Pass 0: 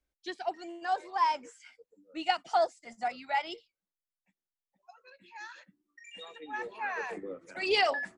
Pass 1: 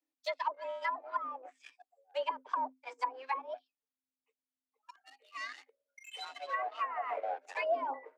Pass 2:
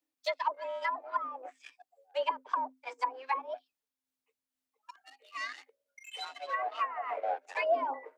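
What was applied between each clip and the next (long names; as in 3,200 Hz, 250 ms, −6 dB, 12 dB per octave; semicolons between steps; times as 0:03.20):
leveller curve on the samples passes 2; treble cut that deepens with the level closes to 370 Hz, closed at −22 dBFS; frequency shifter +260 Hz; level −3.5 dB
amplitude modulation by smooth noise, depth 60%; level +5.5 dB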